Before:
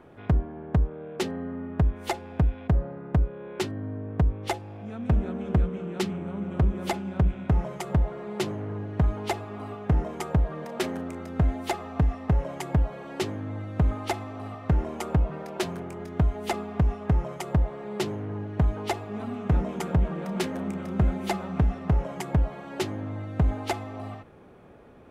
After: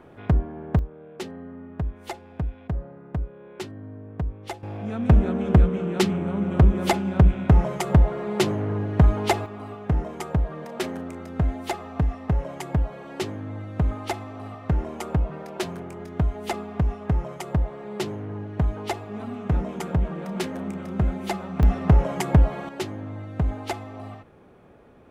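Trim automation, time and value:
+2.5 dB
from 0.79 s -5.5 dB
from 4.63 s +7 dB
from 9.46 s 0 dB
from 21.63 s +7 dB
from 22.69 s -1 dB

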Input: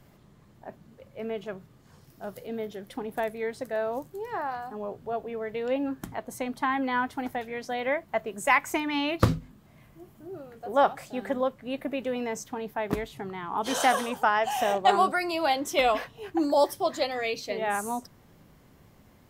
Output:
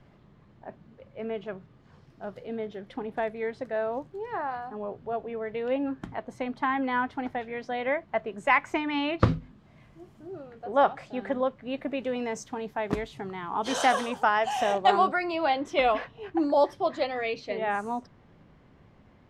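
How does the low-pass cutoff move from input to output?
9.29 s 3.4 kHz
10.14 s 7.2 kHz
10.57 s 3.8 kHz
11.53 s 3.8 kHz
12.29 s 7.1 kHz
14.74 s 7.1 kHz
15.19 s 3.1 kHz

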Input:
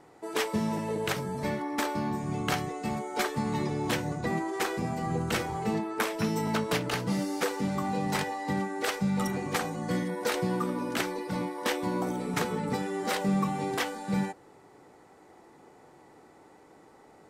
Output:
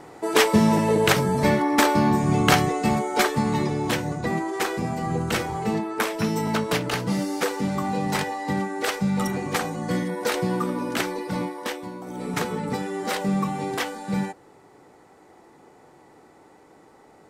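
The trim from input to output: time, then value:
2.71 s +11.5 dB
3.93 s +4.5 dB
11.44 s +4.5 dB
12.02 s -8 dB
12.24 s +3 dB

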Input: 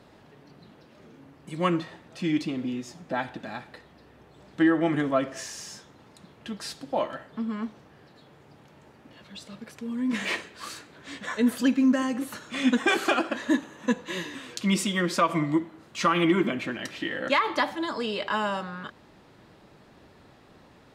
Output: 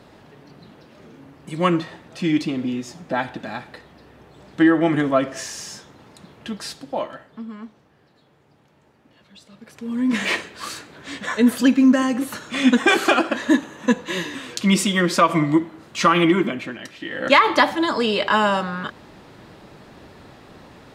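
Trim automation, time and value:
6.49 s +6 dB
7.59 s -4.5 dB
9.52 s -4.5 dB
9.97 s +7 dB
16.16 s +7 dB
16.99 s -3 dB
17.33 s +9.5 dB

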